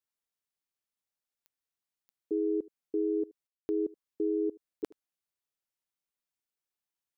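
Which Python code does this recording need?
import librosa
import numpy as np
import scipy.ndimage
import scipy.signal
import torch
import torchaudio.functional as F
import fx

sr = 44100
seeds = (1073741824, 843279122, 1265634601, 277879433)

y = fx.fix_declick_ar(x, sr, threshold=10.0)
y = fx.fix_ambience(y, sr, seeds[0], print_start_s=2.21, print_end_s=2.71, start_s=3.47, end_s=3.69)
y = fx.fix_echo_inverse(y, sr, delay_ms=76, level_db=-22.5)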